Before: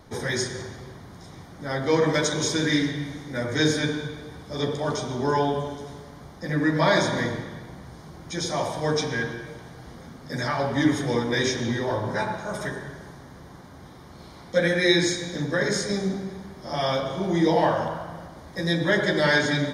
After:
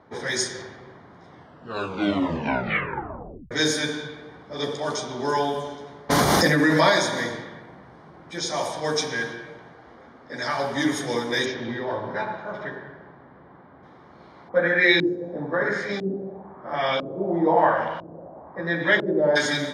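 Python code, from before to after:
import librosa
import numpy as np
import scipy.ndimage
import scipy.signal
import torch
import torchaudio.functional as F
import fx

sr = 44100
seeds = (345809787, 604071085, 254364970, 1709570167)

y = fx.env_flatten(x, sr, amount_pct=100, at=(6.09, 6.89), fade=0.02)
y = fx.resample_bad(y, sr, factor=3, down='none', up='hold', at=(7.61, 8.38))
y = fx.peak_eq(y, sr, hz=160.0, db=-9.5, octaves=0.77, at=(9.73, 10.48))
y = fx.air_absorb(y, sr, metres=290.0, at=(11.44, 13.82), fade=0.02)
y = fx.filter_lfo_lowpass(y, sr, shape='saw_up', hz=1.0, low_hz=290.0, high_hz=3100.0, q=2.1, at=(14.48, 19.35), fade=0.02)
y = fx.edit(y, sr, fx.tape_stop(start_s=1.27, length_s=2.24), tone=tone)
y = fx.highpass(y, sr, hz=350.0, slope=6)
y = fx.env_lowpass(y, sr, base_hz=1600.0, full_db=-22.5)
y = fx.high_shelf(y, sr, hz=6200.0, db=6.5)
y = F.gain(torch.from_numpy(y), 1.0).numpy()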